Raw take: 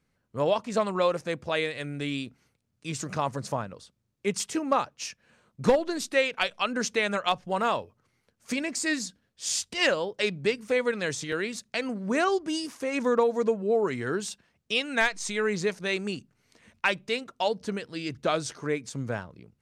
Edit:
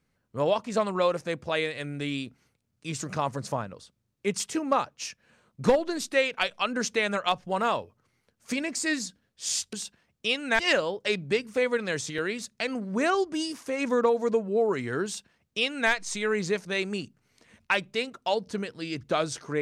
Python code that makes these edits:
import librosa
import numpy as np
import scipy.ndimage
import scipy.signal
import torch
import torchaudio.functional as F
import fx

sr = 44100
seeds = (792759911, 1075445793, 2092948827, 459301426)

y = fx.edit(x, sr, fx.duplicate(start_s=14.19, length_s=0.86, to_s=9.73), tone=tone)